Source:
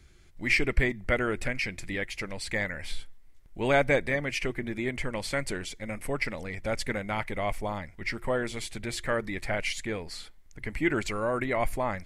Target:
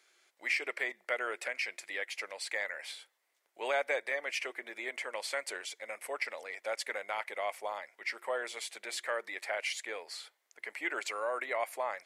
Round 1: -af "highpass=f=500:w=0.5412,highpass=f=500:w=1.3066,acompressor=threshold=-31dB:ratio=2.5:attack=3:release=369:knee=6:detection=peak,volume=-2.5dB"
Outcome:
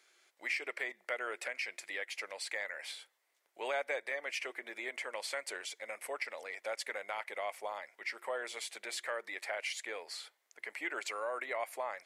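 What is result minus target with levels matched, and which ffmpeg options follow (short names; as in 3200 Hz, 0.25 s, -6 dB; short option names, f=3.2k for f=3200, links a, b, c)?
compressor: peak gain reduction +4 dB
-af "highpass=f=500:w=0.5412,highpass=f=500:w=1.3066,acompressor=threshold=-24dB:ratio=2.5:attack=3:release=369:knee=6:detection=peak,volume=-2.5dB"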